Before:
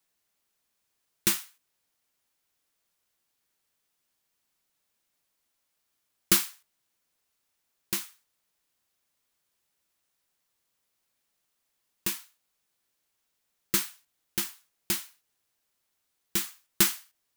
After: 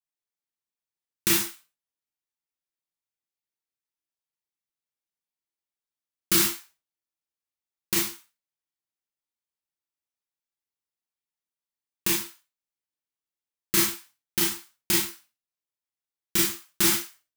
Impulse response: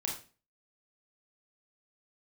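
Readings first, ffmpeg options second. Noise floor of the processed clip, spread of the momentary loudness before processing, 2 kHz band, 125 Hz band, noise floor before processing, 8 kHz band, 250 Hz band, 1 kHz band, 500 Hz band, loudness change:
below −85 dBFS, 15 LU, +5.0 dB, +4.5 dB, −79 dBFS, +4.5 dB, +6.5 dB, +5.0 dB, +7.0 dB, +4.5 dB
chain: -filter_complex "[0:a]agate=range=-25dB:threshold=-56dB:ratio=16:detection=peak[link_01];[1:a]atrim=start_sample=2205,afade=type=out:start_time=0.25:duration=0.01,atrim=end_sample=11466[link_02];[link_01][link_02]afir=irnorm=-1:irlink=0,alimiter=level_in=13.5dB:limit=-1dB:release=50:level=0:latency=1,volume=-8.5dB"

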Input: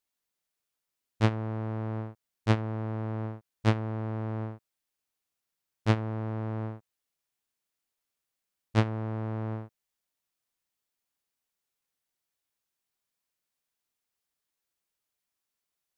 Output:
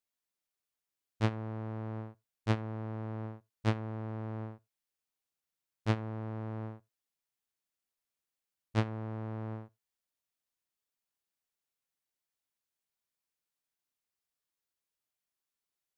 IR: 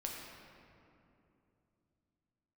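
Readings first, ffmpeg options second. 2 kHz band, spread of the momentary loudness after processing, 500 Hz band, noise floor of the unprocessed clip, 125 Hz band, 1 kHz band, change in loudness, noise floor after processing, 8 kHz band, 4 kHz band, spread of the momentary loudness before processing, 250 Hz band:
−5.5 dB, 11 LU, −5.5 dB, below −85 dBFS, −6.0 dB, −5.5 dB, −5.5 dB, below −85 dBFS, can't be measured, −5.5 dB, 11 LU, −5.5 dB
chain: -filter_complex "[0:a]asplit=2[link_01][link_02];[1:a]atrim=start_sample=2205,afade=type=out:start_time=0.15:duration=0.01,atrim=end_sample=7056[link_03];[link_02][link_03]afir=irnorm=-1:irlink=0,volume=-20.5dB[link_04];[link_01][link_04]amix=inputs=2:normalize=0,volume=-6dB"

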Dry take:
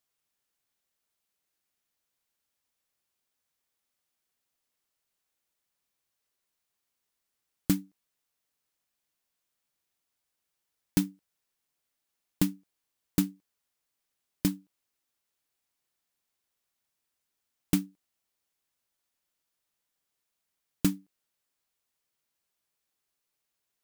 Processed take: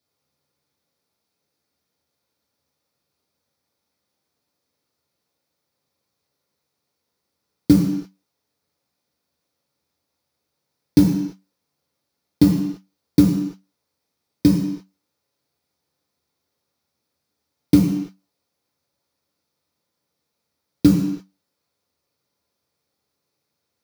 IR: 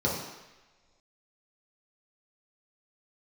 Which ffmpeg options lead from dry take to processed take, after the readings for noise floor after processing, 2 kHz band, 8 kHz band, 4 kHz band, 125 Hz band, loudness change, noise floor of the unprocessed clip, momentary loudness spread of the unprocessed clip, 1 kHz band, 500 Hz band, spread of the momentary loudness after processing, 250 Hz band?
−79 dBFS, can't be measured, +2.5 dB, +7.0 dB, +14.0 dB, +12.5 dB, −84 dBFS, 7 LU, +9.5 dB, +14.0 dB, 14 LU, +15.0 dB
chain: -filter_complex "[1:a]atrim=start_sample=2205,afade=type=out:start_time=0.4:duration=0.01,atrim=end_sample=18081[link_01];[0:a][link_01]afir=irnorm=-1:irlink=0,volume=-2dB"

